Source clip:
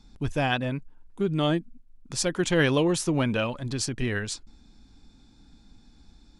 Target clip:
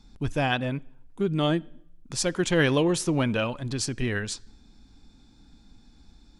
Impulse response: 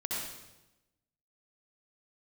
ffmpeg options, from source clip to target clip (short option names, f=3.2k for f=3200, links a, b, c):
-filter_complex "[0:a]asplit=2[a][b];[1:a]atrim=start_sample=2205,asetrate=61740,aresample=44100,lowpass=6k[c];[b][c]afir=irnorm=-1:irlink=0,volume=-25.5dB[d];[a][d]amix=inputs=2:normalize=0"